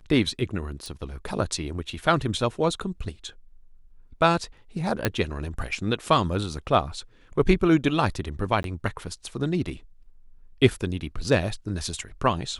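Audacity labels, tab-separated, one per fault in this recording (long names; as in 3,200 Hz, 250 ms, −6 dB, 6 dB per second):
0.860000	0.860000	click
5.050000	5.050000	click −7 dBFS
8.630000	8.640000	drop-out 12 ms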